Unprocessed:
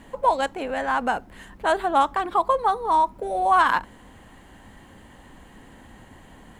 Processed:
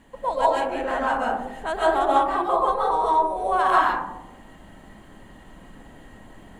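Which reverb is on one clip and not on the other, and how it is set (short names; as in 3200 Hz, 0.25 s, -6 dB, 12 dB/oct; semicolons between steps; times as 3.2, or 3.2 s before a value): digital reverb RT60 0.95 s, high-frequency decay 0.25×, pre-delay 0.1 s, DRR -6.5 dB; gain -7 dB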